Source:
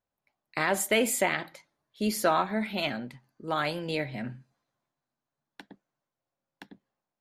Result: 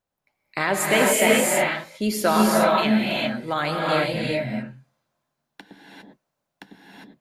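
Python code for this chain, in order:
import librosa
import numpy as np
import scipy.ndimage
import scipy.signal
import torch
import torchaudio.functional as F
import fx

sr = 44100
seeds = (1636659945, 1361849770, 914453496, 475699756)

y = fx.rev_gated(x, sr, seeds[0], gate_ms=430, shape='rising', drr_db=-3.0)
y = y * librosa.db_to_amplitude(3.5)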